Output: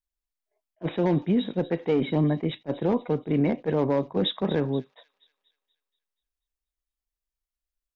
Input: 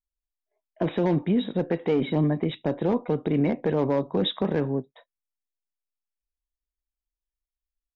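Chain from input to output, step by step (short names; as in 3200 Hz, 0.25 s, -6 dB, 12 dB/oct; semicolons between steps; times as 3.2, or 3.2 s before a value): on a send: thin delay 0.24 s, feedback 47%, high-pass 3500 Hz, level -12 dB; on the sum: attack slew limiter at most 590 dB/s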